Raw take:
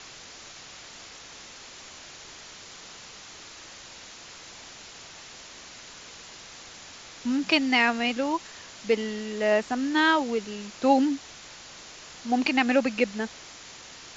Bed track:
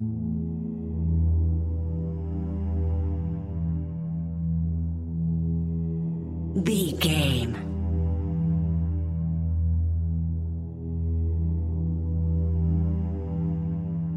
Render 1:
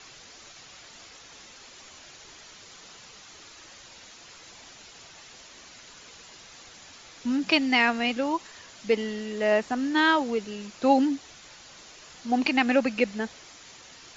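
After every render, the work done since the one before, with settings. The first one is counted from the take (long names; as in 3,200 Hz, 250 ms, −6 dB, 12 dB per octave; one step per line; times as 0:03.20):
broadband denoise 6 dB, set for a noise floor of −46 dBFS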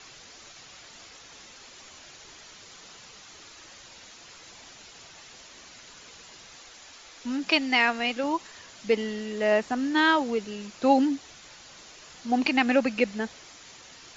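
0:06.58–0:08.24: parametric band 140 Hz −10 dB 1.5 octaves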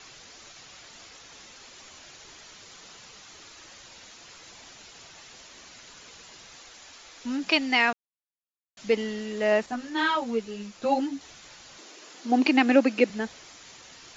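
0:07.93–0:08.77: silence
0:09.66–0:11.21: string-ensemble chorus
0:11.78–0:13.10: high-pass with resonance 300 Hz, resonance Q 2.2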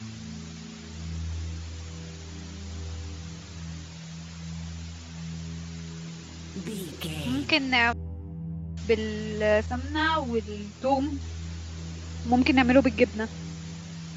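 mix in bed track −11 dB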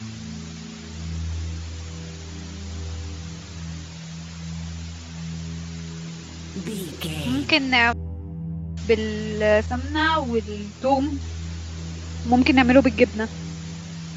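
level +4.5 dB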